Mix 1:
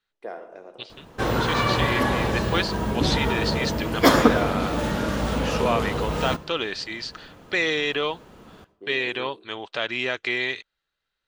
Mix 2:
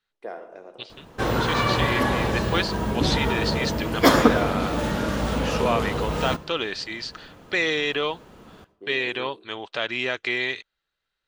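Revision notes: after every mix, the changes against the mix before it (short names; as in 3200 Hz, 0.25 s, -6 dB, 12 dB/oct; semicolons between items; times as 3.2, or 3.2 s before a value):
none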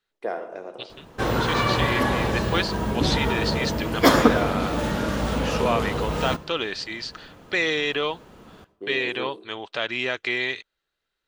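first voice +6.5 dB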